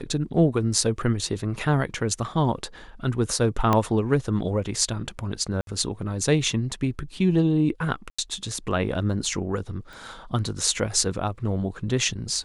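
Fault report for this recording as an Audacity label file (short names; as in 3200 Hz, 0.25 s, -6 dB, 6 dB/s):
3.730000	3.730000	pop -8 dBFS
5.610000	5.670000	gap 62 ms
8.100000	8.190000	gap 85 ms
9.930000	9.930000	pop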